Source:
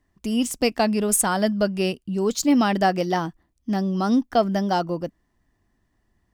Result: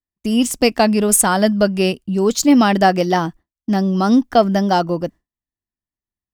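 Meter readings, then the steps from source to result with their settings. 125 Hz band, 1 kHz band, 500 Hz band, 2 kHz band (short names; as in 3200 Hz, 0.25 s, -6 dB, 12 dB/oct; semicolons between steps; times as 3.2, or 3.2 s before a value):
+6.5 dB, +6.5 dB, +6.5 dB, +6.5 dB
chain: expander -35 dBFS; gain +6.5 dB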